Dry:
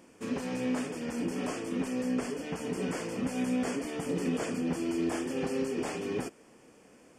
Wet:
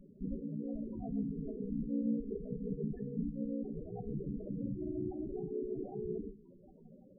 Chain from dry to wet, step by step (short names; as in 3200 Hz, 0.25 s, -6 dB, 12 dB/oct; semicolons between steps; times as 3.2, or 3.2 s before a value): minimum comb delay 5.2 ms; low shelf 270 Hz +5.5 dB; notches 60/120/180/240/300/360/420/480/540 Hz; 1.02–3.36 comb 4.5 ms, depth 87%; compressor 4:1, threshold -39 dBFS, peak gain reduction 13.5 dB; ring modulator 30 Hz; loudest bins only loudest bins 8; flange 0.33 Hz, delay 9.4 ms, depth 6.5 ms, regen +79%; gain +11.5 dB